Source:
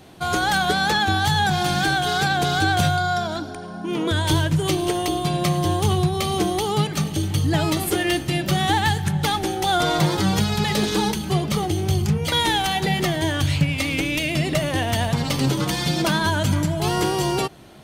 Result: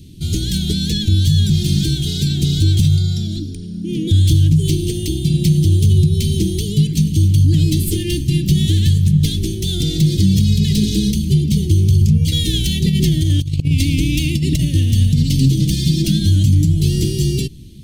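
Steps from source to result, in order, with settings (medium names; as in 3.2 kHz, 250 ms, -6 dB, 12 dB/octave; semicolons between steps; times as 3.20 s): tracing distortion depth 0.021 ms; Chebyshev band-stop 290–3300 Hz, order 2; amplifier tone stack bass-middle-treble 10-0-1; 12.53–14.65 s: compressor with a negative ratio -38 dBFS, ratio -0.5; loudness maximiser +28.5 dB; trim -4 dB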